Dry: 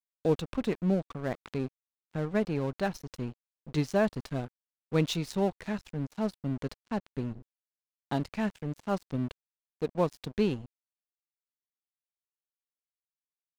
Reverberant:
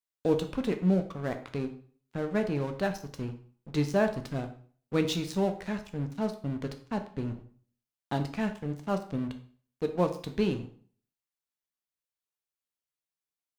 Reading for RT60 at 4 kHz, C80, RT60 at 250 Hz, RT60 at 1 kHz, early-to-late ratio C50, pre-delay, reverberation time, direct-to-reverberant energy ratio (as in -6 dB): 0.40 s, 15.5 dB, 0.50 s, 0.45 s, 11.5 dB, 7 ms, 0.45 s, 6.5 dB